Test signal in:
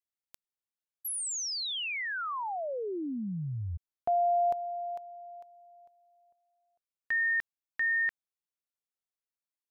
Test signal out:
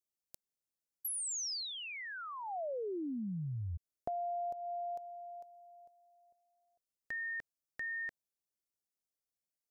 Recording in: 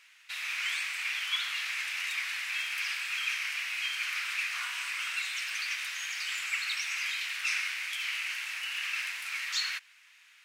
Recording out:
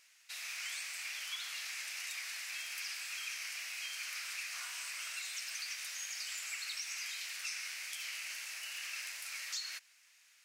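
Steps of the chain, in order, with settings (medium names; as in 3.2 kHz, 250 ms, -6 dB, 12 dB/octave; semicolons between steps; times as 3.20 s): high-order bell 1.8 kHz -10.5 dB 2.4 oct; compression 6:1, threshold -38 dBFS; trim +1 dB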